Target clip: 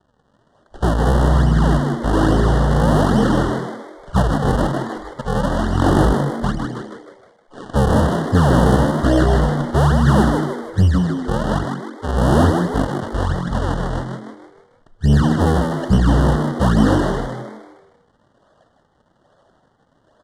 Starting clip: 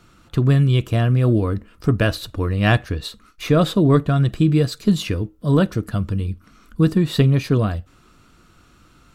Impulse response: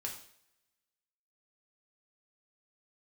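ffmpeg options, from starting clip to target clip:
-filter_complex "[0:a]afwtdn=0.0447,acrossover=split=160[link_01][link_02];[link_02]acrusher=samples=35:mix=1:aa=0.000001:lfo=1:lforange=56:lforate=2.6[link_03];[link_01][link_03]amix=inputs=2:normalize=0,asetrate=19933,aresample=44100,asplit=2[link_04][link_05];[link_05]highpass=frequency=720:poles=1,volume=29dB,asoftclip=type=tanh:threshold=-1dB[link_06];[link_04][link_06]amix=inputs=2:normalize=0,lowpass=frequency=1300:poles=1,volume=-6dB,asuperstop=centerf=2300:order=20:qfactor=2.4,asplit=2[link_07][link_08];[link_08]asplit=5[link_09][link_10][link_11][link_12][link_13];[link_09]adelay=155,afreqshift=88,volume=-5dB[link_14];[link_10]adelay=310,afreqshift=176,volume=-12.1dB[link_15];[link_11]adelay=465,afreqshift=264,volume=-19.3dB[link_16];[link_12]adelay=620,afreqshift=352,volume=-26.4dB[link_17];[link_13]adelay=775,afreqshift=440,volume=-33.5dB[link_18];[link_14][link_15][link_16][link_17][link_18]amix=inputs=5:normalize=0[link_19];[link_07][link_19]amix=inputs=2:normalize=0,volume=-1.5dB"

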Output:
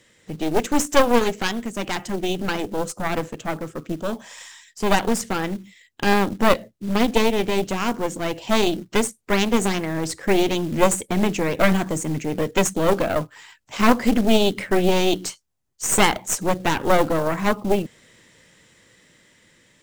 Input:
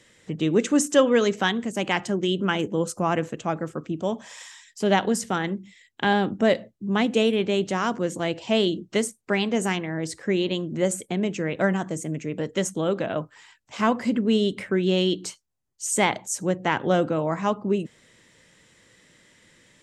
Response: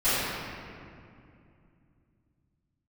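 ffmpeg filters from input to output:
-af "aeval=exprs='0.501*(cos(1*acos(clip(val(0)/0.501,-1,1)))-cos(1*PI/2))+0.00891*(cos(3*acos(clip(val(0)/0.501,-1,1)))-cos(3*PI/2))+0.2*(cos(4*acos(clip(val(0)/0.501,-1,1)))-cos(4*PI/2))+0.0112*(cos(6*acos(clip(val(0)/0.501,-1,1)))-cos(6*PI/2))':channel_layout=same,dynaudnorm=framelen=960:gausssize=5:maxgain=13.5dB,acrusher=bits=5:mode=log:mix=0:aa=0.000001"

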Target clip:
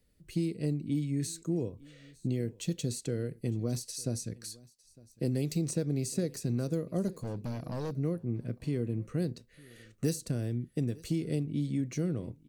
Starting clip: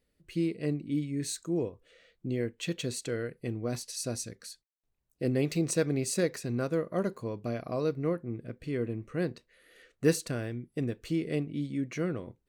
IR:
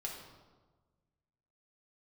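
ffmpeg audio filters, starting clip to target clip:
-filter_complex "[0:a]bass=frequency=250:gain=8,treble=frequency=4000:gain=6,acrossover=split=83|680|3800[link_01][link_02][link_03][link_04];[link_01]acompressor=threshold=-54dB:ratio=4[link_05];[link_02]acompressor=threshold=-28dB:ratio=4[link_06];[link_03]acompressor=threshold=-55dB:ratio=4[link_07];[link_04]acompressor=threshold=-40dB:ratio=4[link_08];[link_05][link_06][link_07][link_08]amix=inputs=4:normalize=0,asettb=1/sr,asplit=3[link_09][link_10][link_11];[link_09]atrim=end=7.084[link_12];[link_10]atrim=start=7.08:end=7.91,asetpts=PTS-STARTPTS,afade=type=in:duration=0.004:curve=qsin,afade=type=out:start_time=0.826:duration=0.004:curve=qsin,asoftclip=type=hard:threshold=-32dB[link_13];[link_11]atrim=start=7.906[link_14];[link_12][link_13]acrossfade=duration=0.004:curve1=hsin:curve2=qsin[link_15];[link_15][link_14]acrossfade=duration=0.004:curve1=qsin:curve2=hsin,aecho=1:1:906:0.0668"

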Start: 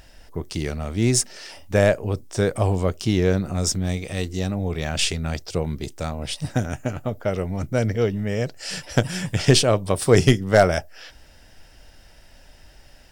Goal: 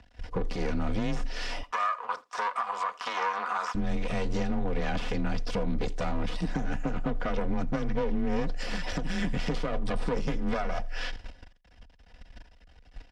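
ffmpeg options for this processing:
ffmpeg -i in.wav -filter_complex "[0:a]aeval=exprs='max(val(0),0)':channel_layout=same,afreqshift=21,asettb=1/sr,asplit=3[link_01][link_02][link_03];[link_01]atrim=end=1.634[link_04];[link_02]atrim=start=1.63:end=3.75,asetpts=PTS-STARTPTS,afade=type=in:duration=0.004:curve=qsin,afade=type=out:start_time=2.116:duration=0.004:curve=qsin,highpass=frequency=1100:width_type=q:width=4.9[link_05];[link_03]atrim=start=3.746[link_06];[link_04][link_05]acrossfade=duration=0.004:curve1=hsin:curve2=qsin[link_07];[link_07][link_06]acrossfade=duration=0.004:curve1=qsin:curve2=hsin,acompressor=threshold=-30dB:ratio=12,aecho=1:1:4.1:0.53,agate=range=-14dB:threshold=-45dB:ratio=16:detection=peak,deesser=0.9,alimiter=level_in=4.5dB:limit=-24dB:level=0:latency=1:release=115,volume=-4.5dB,lowpass=3900,aecho=1:1:84:0.0668,volume=9dB" out.wav

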